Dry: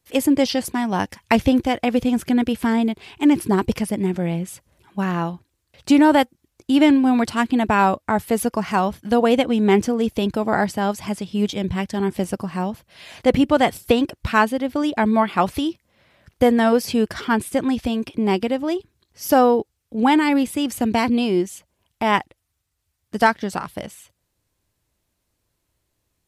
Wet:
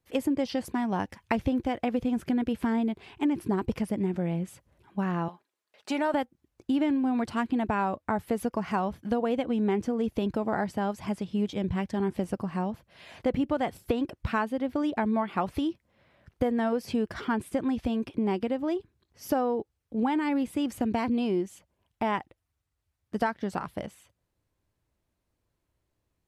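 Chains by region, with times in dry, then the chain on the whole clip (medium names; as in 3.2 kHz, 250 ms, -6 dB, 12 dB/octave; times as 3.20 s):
5.28–6.14 s: high-pass 500 Hz + comb 4.8 ms, depth 37%
whole clip: treble shelf 2.9 kHz -10.5 dB; compression 4:1, threshold -20 dBFS; trim -4 dB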